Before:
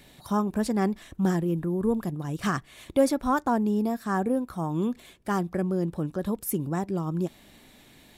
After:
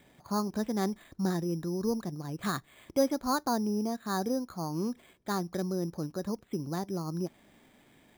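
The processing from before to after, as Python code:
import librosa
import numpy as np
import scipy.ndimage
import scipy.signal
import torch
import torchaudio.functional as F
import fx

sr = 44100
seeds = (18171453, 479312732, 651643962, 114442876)

y = fx.low_shelf(x, sr, hz=71.0, db=-10.5)
y = np.repeat(scipy.signal.resample_poly(y, 1, 8), 8)[:len(y)]
y = F.gain(torch.from_numpy(y), -4.5).numpy()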